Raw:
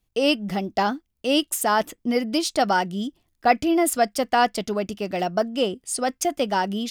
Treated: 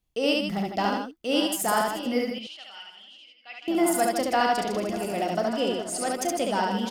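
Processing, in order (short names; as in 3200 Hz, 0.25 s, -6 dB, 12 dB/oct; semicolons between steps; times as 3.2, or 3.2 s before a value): regenerating reverse delay 0.56 s, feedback 63%, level -12.5 dB; 2.31–3.68 band-pass 2900 Hz, Q 6.5; loudspeakers at several distances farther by 12 m -11 dB, 24 m -2 dB, 53 m -7 dB; gain -5.5 dB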